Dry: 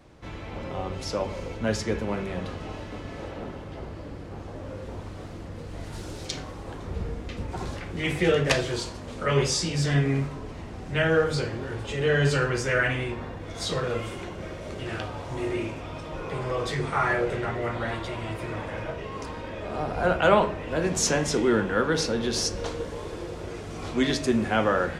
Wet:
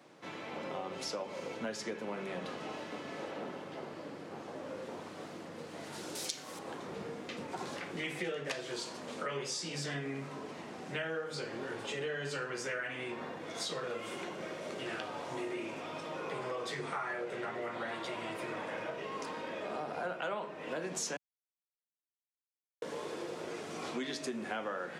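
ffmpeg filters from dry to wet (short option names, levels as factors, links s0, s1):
-filter_complex "[0:a]asettb=1/sr,asplit=3[s0][s1][s2];[s0]atrim=end=6.154[s3];[s1]atrim=start=6.15:end=6.59,asetpts=PTS-STARTPTS,afade=t=in:d=0.004:c=qsin,afade=t=out:st=0.436:d=0.004:c=qsin,aemphasis=mode=production:type=75kf[s4];[s2]atrim=start=6.586[s5];[s3][s4]acrossfade=d=0.004:c1=hsin:c2=qsin[s6];[s6][s5]acrossfade=d=0.004:c1=qsin:c2=hsin,asplit=3[s7][s8][s9];[s7]atrim=end=21.17,asetpts=PTS-STARTPTS,afade=t=out:st=21.166:d=0.004:c=hsin[s10];[s8]atrim=start=21.17:end=22.82,asetpts=PTS-STARTPTS,volume=0[s11];[s9]atrim=start=22.82,asetpts=PTS-STARTPTS,afade=t=in:d=0.004:c=hsin[s12];[s10][s11][s12]concat=n=3:v=0:a=1,highpass=f=150:w=0.5412,highpass=f=150:w=1.3066,lowshelf=f=230:g=-9,acompressor=threshold=0.02:ratio=6,volume=0.841"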